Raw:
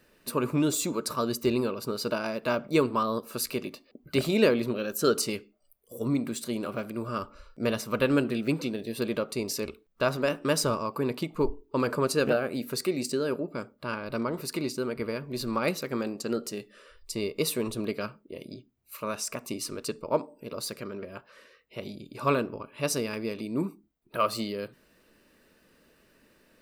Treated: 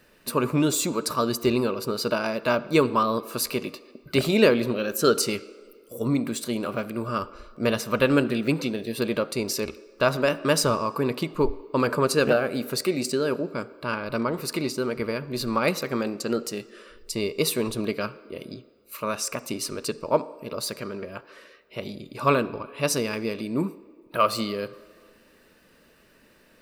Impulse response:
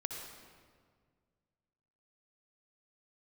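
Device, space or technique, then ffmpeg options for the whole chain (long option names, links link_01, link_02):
filtered reverb send: -filter_complex "[0:a]asplit=2[link_01][link_02];[link_02]highpass=frequency=290:width=0.5412,highpass=frequency=290:width=1.3066,lowpass=6100[link_03];[1:a]atrim=start_sample=2205[link_04];[link_03][link_04]afir=irnorm=-1:irlink=0,volume=-14dB[link_05];[link_01][link_05]amix=inputs=2:normalize=0,volume=4dB"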